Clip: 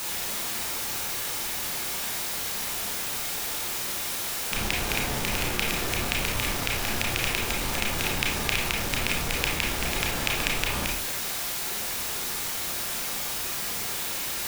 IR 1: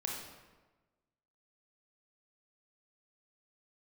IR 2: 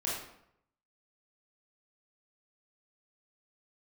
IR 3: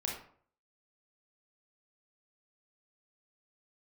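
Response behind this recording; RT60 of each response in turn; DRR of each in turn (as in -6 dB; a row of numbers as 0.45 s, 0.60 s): 3; 1.2 s, 0.75 s, 0.55 s; -1.5 dB, -6.0 dB, -2.0 dB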